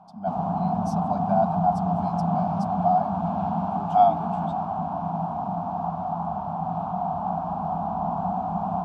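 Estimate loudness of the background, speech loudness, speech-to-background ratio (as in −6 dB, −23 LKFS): −27.5 LKFS, −26.0 LKFS, 1.5 dB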